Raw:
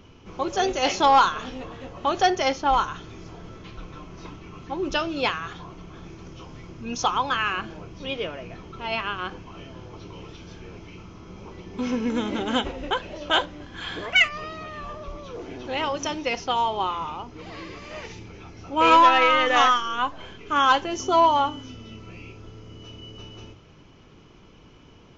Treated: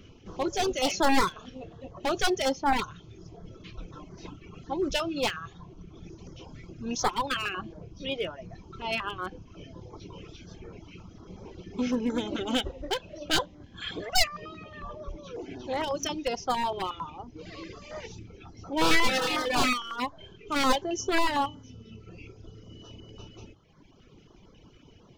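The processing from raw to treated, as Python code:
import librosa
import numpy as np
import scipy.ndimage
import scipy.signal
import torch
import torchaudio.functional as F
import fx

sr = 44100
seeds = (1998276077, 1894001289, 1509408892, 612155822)

y = np.minimum(x, 2.0 * 10.0 ** (-21.0 / 20.0) - x)
y = fx.dereverb_blind(y, sr, rt60_s=1.6)
y = fx.filter_held_notch(y, sr, hz=11.0, low_hz=890.0, high_hz=2700.0)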